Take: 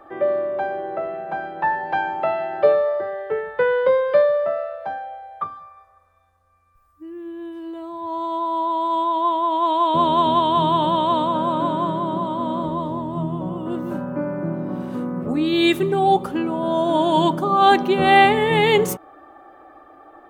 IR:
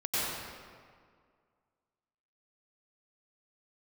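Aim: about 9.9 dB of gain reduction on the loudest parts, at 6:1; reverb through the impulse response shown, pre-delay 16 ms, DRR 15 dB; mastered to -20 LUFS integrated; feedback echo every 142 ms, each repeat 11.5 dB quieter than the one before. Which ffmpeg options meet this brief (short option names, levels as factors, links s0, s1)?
-filter_complex "[0:a]acompressor=threshold=0.1:ratio=6,aecho=1:1:142|284|426:0.266|0.0718|0.0194,asplit=2[s0][s1];[1:a]atrim=start_sample=2205,adelay=16[s2];[s1][s2]afir=irnorm=-1:irlink=0,volume=0.0596[s3];[s0][s3]amix=inputs=2:normalize=0,volume=1.68"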